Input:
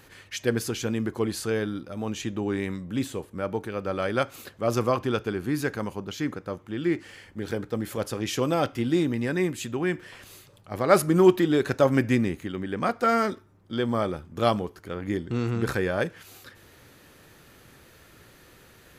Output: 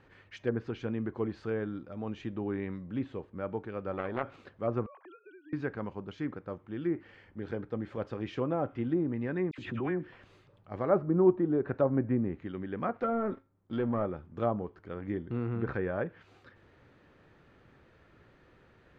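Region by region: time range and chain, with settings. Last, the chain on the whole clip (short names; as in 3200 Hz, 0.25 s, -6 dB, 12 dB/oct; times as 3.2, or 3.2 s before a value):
3.92–4.36 transient shaper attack +10 dB, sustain +4 dB + core saturation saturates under 1900 Hz
4.86–5.53 sine-wave speech + HPF 1300 Hz 6 dB/oct + compressor 10:1, threshold -42 dBFS
9.51–10.12 dispersion lows, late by 72 ms, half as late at 1600 Hz + backwards sustainer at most 31 dB/s
12.94–14.06 sample leveller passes 2 + resonator 270 Hz, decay 0.32 s, mix 40%
whole clip: treble ducked by the level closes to 970 Hz, closed at -18.5 dBFS; Bessel low-pass 1800 Hz, order 2; gain -6 dB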